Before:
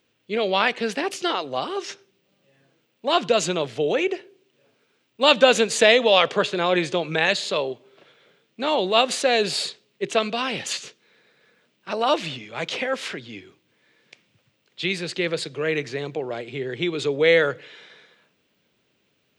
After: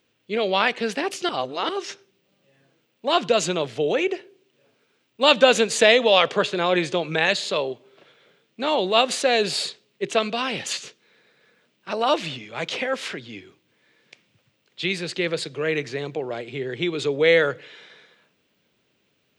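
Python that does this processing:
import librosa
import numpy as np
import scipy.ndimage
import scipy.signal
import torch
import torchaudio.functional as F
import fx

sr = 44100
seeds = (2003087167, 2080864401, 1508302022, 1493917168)

y = fx.edit(x, sr, fx.reverse_span(start_s=1.29, length_s=0.4), tone=tone)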